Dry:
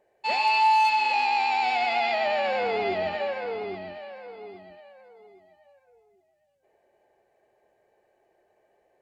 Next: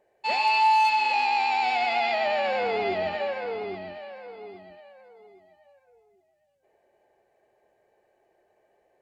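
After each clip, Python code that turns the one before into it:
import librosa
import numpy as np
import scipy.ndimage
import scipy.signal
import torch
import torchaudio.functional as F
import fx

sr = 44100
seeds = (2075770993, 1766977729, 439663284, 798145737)

y = x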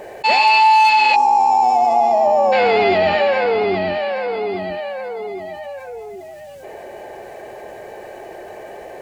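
y = fx.spec_box(x, sr, start_s=1.16, length_s=1.36, low_hz=1200.0, high_hz=5100.0, gain_db=-24)
y = fx.env_flatten(y, sr, amount_pct=50)
y = F.gain(torch.from_numpy(y), 8.0).numpy()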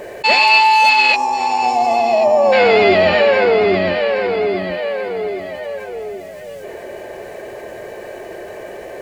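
y = fx.peak_eq(x, sr, hz=800.0, db=-11.5, octaves=0.24)
y = fx.echo_alternate(y, sr, ms=543, hz=1600.0, feedback_pct=55, wet_db=-11)
y = F.gain(torch.from_numpy(y), 4.5).numpy()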